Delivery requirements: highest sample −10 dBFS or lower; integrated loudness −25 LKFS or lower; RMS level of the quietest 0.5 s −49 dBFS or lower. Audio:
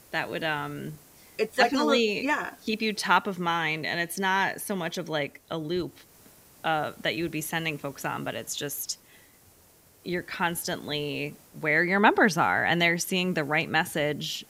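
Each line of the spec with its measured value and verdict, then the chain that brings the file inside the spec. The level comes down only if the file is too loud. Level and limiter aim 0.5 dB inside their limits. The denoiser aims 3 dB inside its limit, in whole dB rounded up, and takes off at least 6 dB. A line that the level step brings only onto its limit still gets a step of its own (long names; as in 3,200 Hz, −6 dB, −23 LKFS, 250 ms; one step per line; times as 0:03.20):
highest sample −7.0 dBFS: out of spec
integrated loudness −27.0 LKFS: in spec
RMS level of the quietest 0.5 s −58 dBFS: in spec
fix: brickwall limiter −10.5 dBFS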